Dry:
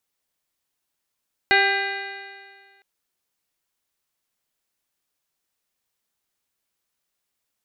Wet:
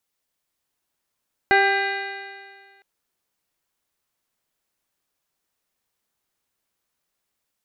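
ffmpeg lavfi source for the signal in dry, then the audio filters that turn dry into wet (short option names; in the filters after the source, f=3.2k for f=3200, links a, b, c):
-f lavfi -i "aevalsrc='0.075*pow(10,-3*t/1.81)*sin(2*PI*392.33*t)+0.106*pow(10,-3*t/1.81)*sin(2*PI*786.66*t)+0.015*pow(10,-3*t/1.81)*sin(2*PI*1184.96*t)+0.133*pow(10,-3*t/1.81)*sin(2*PI*1589.18*t)+0.133*pow(10,-3*t/1.81)*sin(2*PI*2001.22*t)+0.0596*pow(10,-3*t/1.81)*sin(2*PI*2422.9*t)+0.0422*pow(10,-3*t/1.81)*sin(2*PI*2856*t)+0.00891*pow(10,-3*t/1.81)*sin(2*PI*3302.19*t)+0.0376*pow(10,-3*t/1.81)*sin(2*PI*3763.07*t)+0.0422*pow(10,-3*t/1.81)*sin(2*PI*4240.13*t)':d=1.31:s=44100"
-filter_complex "[0:a]acrossover=split=1800[a][b];[a]dynaudnorm=f=370:g=3:m=3.5dB[c];[b]alimiter=limit=-23.5dB:level=0:latency=1[d];[c][d]amix=inputs=2:normalize=0"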